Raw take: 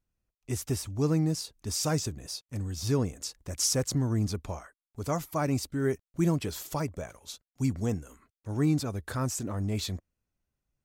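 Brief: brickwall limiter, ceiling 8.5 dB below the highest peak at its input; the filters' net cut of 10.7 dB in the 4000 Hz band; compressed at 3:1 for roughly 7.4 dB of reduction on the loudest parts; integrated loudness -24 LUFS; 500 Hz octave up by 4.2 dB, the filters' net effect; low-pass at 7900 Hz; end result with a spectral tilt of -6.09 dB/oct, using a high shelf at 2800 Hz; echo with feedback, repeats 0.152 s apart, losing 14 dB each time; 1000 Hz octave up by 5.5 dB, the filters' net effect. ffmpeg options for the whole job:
-af "lowpass=7.9k,equalizer=f=500:t=o:g=4,equalizer=f=1k:t=o:g=7,highshelf=f=2.8k:g=-6,equalizer=f=4k:t=o:g=-8.5,acompressor=threshold=-30dB:ratio=3,alimiter=level_in=2.5dB:limit=-24dB:level=0:latency=1,volume=-2.5dB,aecho=1:1:152|304:0.2|0.0399,volume=13dB"

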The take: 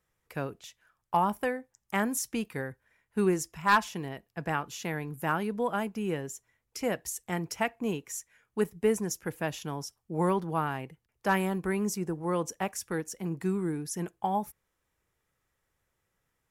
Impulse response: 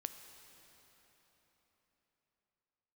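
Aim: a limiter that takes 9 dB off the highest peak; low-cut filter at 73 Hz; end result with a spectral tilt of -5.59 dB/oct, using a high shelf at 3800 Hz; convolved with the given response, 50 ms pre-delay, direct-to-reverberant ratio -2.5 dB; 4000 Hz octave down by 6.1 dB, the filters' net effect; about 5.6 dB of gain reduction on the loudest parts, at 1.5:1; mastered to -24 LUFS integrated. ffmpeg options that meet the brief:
-filter_complex "[0:a]highpass=73,highshelf=f=3.8k:g=-7,equalizer=f=4k:t=o:g=-4,acompressor=threshold=-36dB:ratio=1.5,alimiter=level_in=3.5dB:limit=-24dB:level=0:latency=1,volume=-3.5dB,asplit=2[a][b];[1:a]atrim=start_sample=2205,adelay=50[c];[b][c]afir=irnorm=-1:irlink=0,volume=5dB[d];[a][d]amix=inputs=2:normalize=0,volume=11dB"

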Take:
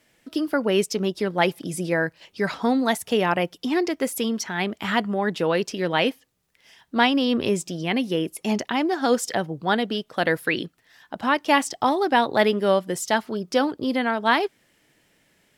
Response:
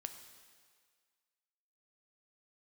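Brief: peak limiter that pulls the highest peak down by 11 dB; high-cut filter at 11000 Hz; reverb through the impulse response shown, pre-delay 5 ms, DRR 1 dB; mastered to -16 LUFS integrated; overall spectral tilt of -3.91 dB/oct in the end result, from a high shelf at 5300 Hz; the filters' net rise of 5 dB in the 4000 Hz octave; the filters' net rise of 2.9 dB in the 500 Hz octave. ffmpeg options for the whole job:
-filter_complex "[0:a]lowpass=11k,equalizer=f=500:t=o:g=3.5,equalizer=f=4k:t=o:g=5,highshelf=f=5.3k:g=5,alimiter=limit=-14.5dB:level=0:latency=1,asplit=2[a][b];[1:a]atrim=start_sample=2205,adelay=5[c];[b][c]afir=irnorm=-1:irlink=0,volume=2dB[d];[a][d]amix=inputs=2:normalize=0,volume=6.5dB"

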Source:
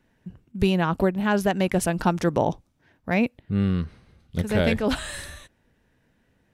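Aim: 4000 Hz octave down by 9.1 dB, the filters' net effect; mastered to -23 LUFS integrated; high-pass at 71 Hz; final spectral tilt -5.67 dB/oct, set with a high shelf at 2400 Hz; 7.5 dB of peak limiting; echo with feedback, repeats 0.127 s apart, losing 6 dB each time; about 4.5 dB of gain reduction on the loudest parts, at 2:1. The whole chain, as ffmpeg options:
-af "highpass=71,highshelf=f=2.4k:g=-7,equalizer=f=4k:t=o:g=-6.5,acompressor=threshold=-25dB:ratio=2,alimiter=limit=-21dB:level=0:latency=1,aecho=1:1:127|254|381|508|635|762:0.501|0.251|0.125|0.0626|0.0313|0.0157,volume=8.5dB"

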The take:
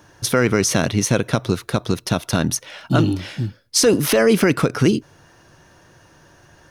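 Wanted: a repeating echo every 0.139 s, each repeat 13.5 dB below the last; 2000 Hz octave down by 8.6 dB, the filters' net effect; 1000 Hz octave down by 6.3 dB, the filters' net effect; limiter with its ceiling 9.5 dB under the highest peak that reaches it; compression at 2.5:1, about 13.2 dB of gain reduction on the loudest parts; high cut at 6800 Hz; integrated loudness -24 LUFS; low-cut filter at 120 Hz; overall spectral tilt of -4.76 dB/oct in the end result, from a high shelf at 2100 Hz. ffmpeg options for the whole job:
-af "highpass=120,lowpass=6.8k,equalizer=f=1k:t=o:g=-5.5,equalizer=f=2k:t=o:g=-7,highshelf=f=2.1k:g=-4.5,acompressor=threshold=-33dB:ratio=2.5,alimiter=level_in=2.5dB:limit=-24dB:level=0:latency=1,volume=-2.5dB,aecho=1:1:139|278:0.211|0.0444,volume=13dB"

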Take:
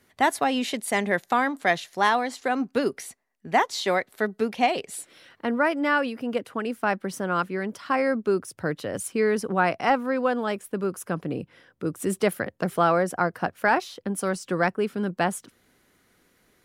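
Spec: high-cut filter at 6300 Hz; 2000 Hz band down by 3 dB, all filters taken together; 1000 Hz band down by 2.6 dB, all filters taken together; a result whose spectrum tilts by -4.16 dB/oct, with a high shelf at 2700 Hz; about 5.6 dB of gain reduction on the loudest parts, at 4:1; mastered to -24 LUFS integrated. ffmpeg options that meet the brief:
-af "lowpass=6.3k,equalizer=f=1k:t=o:g=-3.5,equalizer=f=2k:t=o:g=-5.5,highshelf=f=2.7k:g=8,acompressor=threshold=-24dB:ratio=4,volume=6.5dB"

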